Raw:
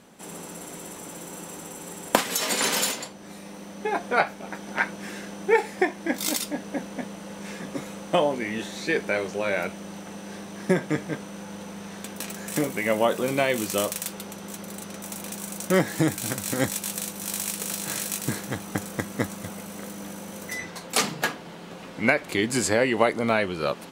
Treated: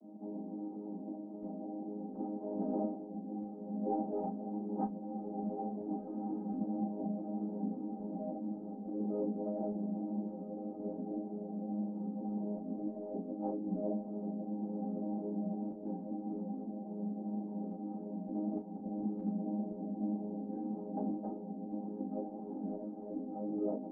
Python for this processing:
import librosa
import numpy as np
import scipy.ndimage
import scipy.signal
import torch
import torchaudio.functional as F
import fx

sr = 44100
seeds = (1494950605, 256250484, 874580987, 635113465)

y = fx.chord_vocoder(x, sr, chord='major triad', root=56)
y = scipy.signal.sosfilt(scipy.signal.cheby1(4, 1.0, [180.0, 780.0], 'bandpass', fs=sr, output='sos'), y)
y = fx.peak_eq(y, sr, hz=550.0, db=-8.5, octaves=0.27)
y = fx.notch(y, sr, hz=440.0, q=12.0)
y = fx.over_compress(y, sr, threshold_db=-34.0, ratio=-1.0)
y = fx.tremolo_random(y, sr, seeds[0], hz=3.5, depth_pct=55)
y = fx.doubler(y, sr, ms=32.0, db=-5.5)
y = fx.echo_diffused(y, sr, ms=1494, feedback_pct=49, wet_db=-5.5)
y = fx.ensemble(y, sr)
y = y * librosa.db_to_amplitude(1.0)